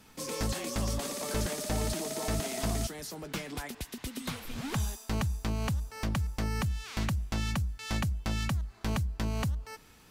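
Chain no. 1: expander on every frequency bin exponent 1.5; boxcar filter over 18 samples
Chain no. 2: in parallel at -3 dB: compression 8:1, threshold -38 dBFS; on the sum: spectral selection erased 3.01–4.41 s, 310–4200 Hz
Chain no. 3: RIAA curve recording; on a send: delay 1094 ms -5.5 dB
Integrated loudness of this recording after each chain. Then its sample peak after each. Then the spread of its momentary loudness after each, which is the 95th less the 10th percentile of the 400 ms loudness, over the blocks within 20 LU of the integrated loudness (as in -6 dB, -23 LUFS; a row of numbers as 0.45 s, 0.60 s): -37.5 LUFS, -32.0 LUFS, -28.5 LUFS; -25.0 dBFS, -19.0 dBFS, -13.0 dBFS; 11 LU, 7 LU, 8 LU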